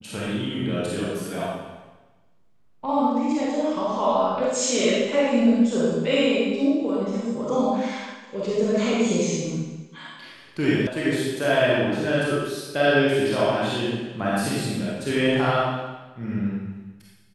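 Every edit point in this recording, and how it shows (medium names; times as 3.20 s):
10.87 s: sound stops dead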